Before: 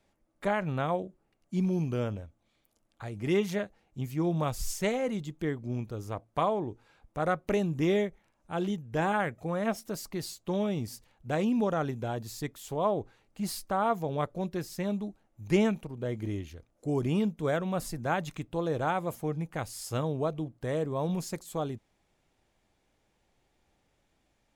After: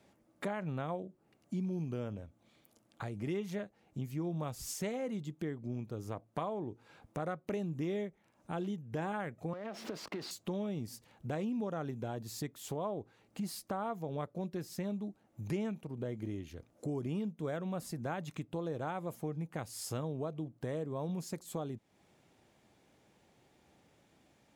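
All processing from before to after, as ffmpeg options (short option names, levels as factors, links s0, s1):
-filter_complex "[0:a]asettb=1/sr,asplit=3[s0][s1][s2];[s0]atrim=end=9.534[s3];[s1]atrim=start=9.53:end=10.31,asetpts=PTS-STARTPTS,afade=t=in:d=0.004:c=qsin,afade=t=out:st=0.776:d=0.004:c=qsin,aeval=exprs='val(0)+0.5*0.0158*sgn(val(0))':c=same,acrossover=split=250 4500:gain=0.178 1 0.0794[s4][s5][s6];[s4][s5][s6]amix=inputs=3:normalize=0,acompressor=threshold=0.02:ratio=10:attack=3.2:release=140:knee=1:detection=peak[s7];[s2]atrim=start=10.306[s8];[s3][s7]acrossfade=d=0.004:c1=hsin:c2=qsin[s9];[s9][s8]acrossfade=d=0.004:c1=qsin:c2=hsin,highpass=120,lowshelf=f=440:g=5.5,acompressor=threshold=0.00562:ratio=3,volume=1.68"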